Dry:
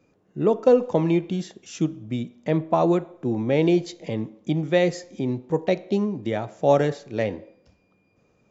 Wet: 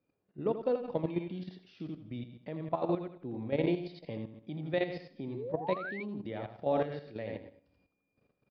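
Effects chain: steep low-pass 4900 Hz 72 dB/oct; resonator 280 Hz, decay 0.29 s, harmonics all, mix 40%; feedback echo 82 ms, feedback 35%, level -5 dB; painted sound rise, 5.34–6.03, 350–2400 Hz -29 dBFS; level quantiser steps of 11 dB; gain -5.5 dB

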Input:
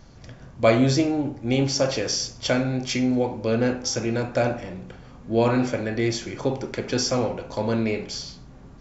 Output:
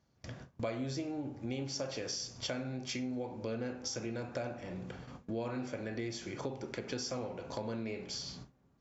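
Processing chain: HPF 74 Hz 12 dB/oct; gate with hold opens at -34 dBFS; compressor 4:1, threshold -36 dBFS, peak gain reduction 19.5 dB; gain -2 dB

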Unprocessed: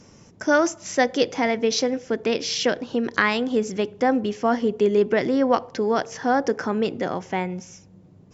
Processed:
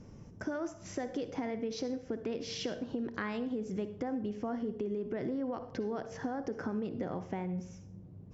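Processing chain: tilt -3 dB/oct; limiter -12 dBFS, peak gain reduction 7.5 dB; compressor, threshold -25 dBFS, peak gain reduction 10 dB; reverb RT60 0.45 s, pre-delay 48 ms, DRR 11.5 dB; gain -8 dB

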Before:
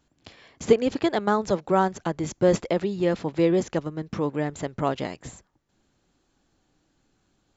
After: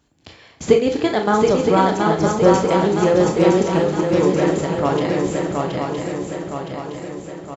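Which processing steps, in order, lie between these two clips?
HPF 54 Hz; low shelf 70 Hz +6 dB; doubler 37 ms -12 dB; swung echo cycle 0.965 s, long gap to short 3:1, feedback 53%, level -3.5 dB; reverb, pre-delay 22 ms, DRR 4 dB; 2.15–4.78 warbling echo 0.137 s, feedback 65%, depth 152 cents, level -19 dB; gain +4 dB

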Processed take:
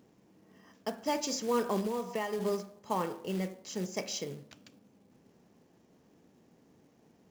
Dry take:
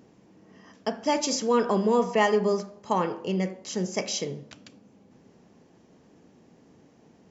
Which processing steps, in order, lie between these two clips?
1.82–2.39 compressor 5:1, threshold -24 dBFS, peak gain reduction 7.5 dB; short-mantissa float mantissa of 2-bit; gain -7 dB

